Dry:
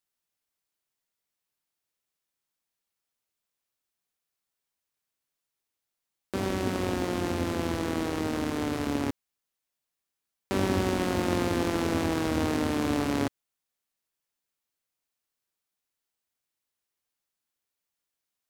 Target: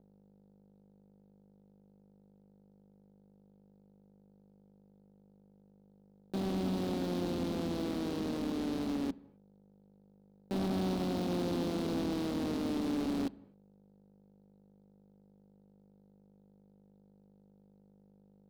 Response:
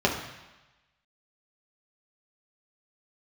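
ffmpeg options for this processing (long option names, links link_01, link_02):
-filter_complex "[0:a]aeval=exprs='val(0)+0.00708*(sin(2*PI*50*n/s)+sin(2*PI*2*50*n/s)/2+sin(2*PI*3*50*n/s)/3+sin(2*PI*4*50*n/s)/4+sin(2*PI*5*50*n/s)/5)':channel_layout=same,equalizer=frequency=125:width_type=o:width=1:gain=-3,equalizer=frequency=250:width_type=o:width=1:gain=4,equalizer=frequency=500:width_type=o:width=1:gain=3,equalizer=frequency=2000:width_type=o:width=1:gain=-11,equalizer=frequency=4000:width_type=o:width=1:gain=11,equalizer=frequency=8000:width_type=o:width=1:gain=-12,acrusher=bits=5:mix=0:aa=0.5,equalizer=frequency=190:width=3.7:gain=10.5,asoftclip=type=tanh:threshold=-23dB,asplit=2[link_01][link_02];[1:a]atrim=start_sample=2205,afade=type=out:start_time=0.23:duration=0.01,atrim=end_sample=10584,asetrate=29988,aresample=44100[link_03];[link_02][link_03]afir=irnorm=-1:irlink=0,volume=-33dB[link_04];[link_01][link_04]amix=inputs=2:normalize=0,volume=-7.5dB"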